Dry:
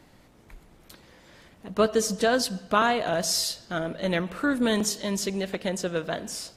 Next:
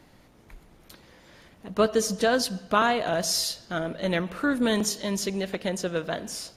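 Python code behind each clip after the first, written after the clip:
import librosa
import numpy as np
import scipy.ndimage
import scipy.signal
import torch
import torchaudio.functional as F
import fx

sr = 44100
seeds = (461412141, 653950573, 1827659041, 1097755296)

y = fx.notch(x, sr, hz=7800.0, q=12.0)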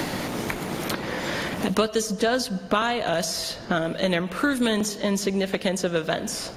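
y = fx.band_squash(x, sr, depth_pct=100)
y = y * librosa.db_to_amplitude(2.0)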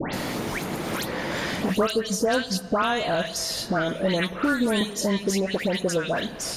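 y = fx.dispersion(x, sr, late='highs', ms=137.0, hz=2100.0)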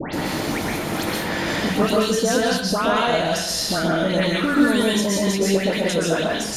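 y = fx.rev_plate(x, sr, seeds[0], rt60_s=0.56, hf_ratio=0.95, predelay_ms=110, drr_db=-3.0)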